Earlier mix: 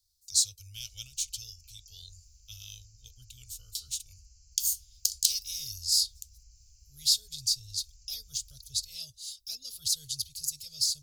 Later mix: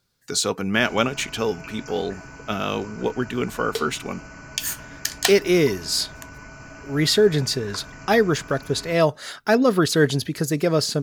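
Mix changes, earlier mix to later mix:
background +8.0 dB; master: remove inverse Chebyshev band-stop 180–1900 Hz, stop band 50 dB

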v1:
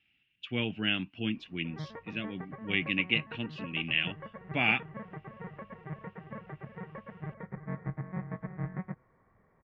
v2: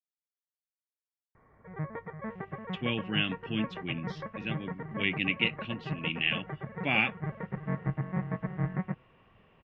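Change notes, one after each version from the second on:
speech: entry +2.30 s; background +5.0 dB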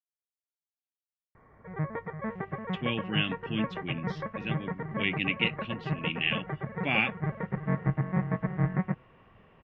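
background +4.0 dB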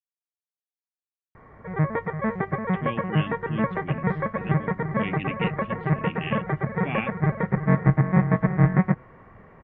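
speech: add air absorption 480 m; background +9.0 dB

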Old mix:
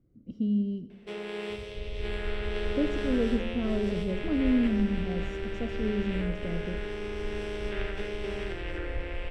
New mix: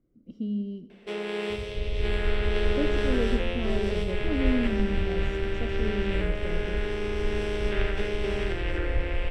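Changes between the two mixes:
speech: add bell 96 Hz -11.5 dB 1.4 oct; first sound +5.0 dB; second sound +7.5 dB

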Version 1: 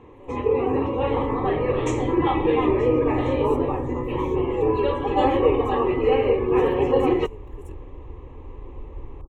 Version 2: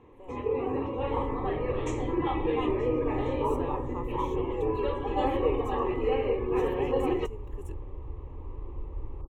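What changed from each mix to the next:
first sound -8.0 dB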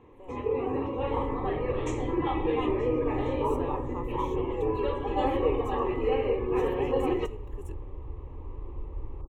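reverb: on, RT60 0.65 s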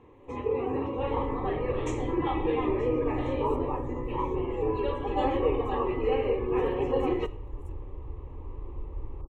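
speech -11.0 dB

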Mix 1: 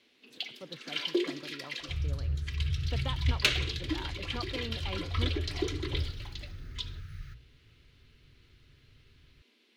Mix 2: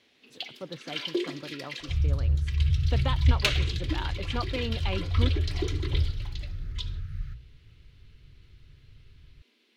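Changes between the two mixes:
speech +7.0 dB; second sound: add tilt -2 dB/oct

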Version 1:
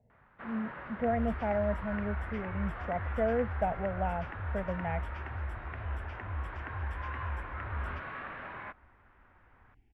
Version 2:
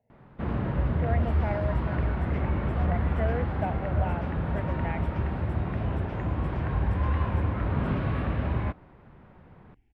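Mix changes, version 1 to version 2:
speech: add tilt +3 dB/oct; first sound: remove band-pass 1600 Hz, Q 1.6

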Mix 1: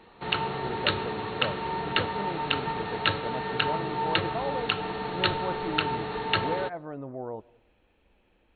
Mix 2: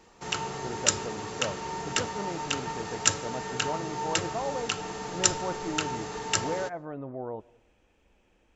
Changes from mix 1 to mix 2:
background -4.0 dB; master: remove brick-wall FIR low-pass 4400 Hz

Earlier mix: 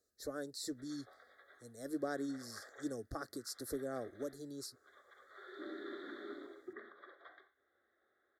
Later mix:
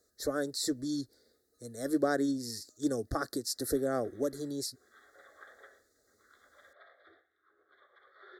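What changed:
speech +10.0 dB; background: entry +2.85 s

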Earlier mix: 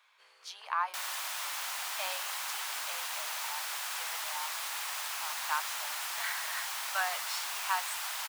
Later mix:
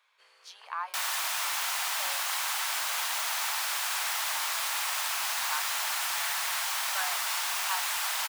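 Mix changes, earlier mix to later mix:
speech -3.5 dB; second sound +4.0 dB; reverb: on, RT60 1.4 s

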